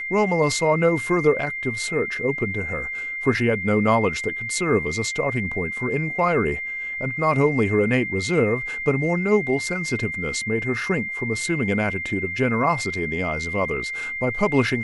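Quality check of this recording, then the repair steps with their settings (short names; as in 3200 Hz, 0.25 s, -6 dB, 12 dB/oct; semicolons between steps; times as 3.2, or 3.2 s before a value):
tone 2100 Hz -27 dBFS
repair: notch 2100 Hz, Q 30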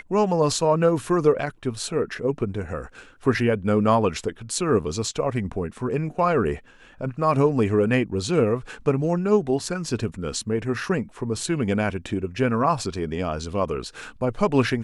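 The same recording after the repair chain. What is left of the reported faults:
none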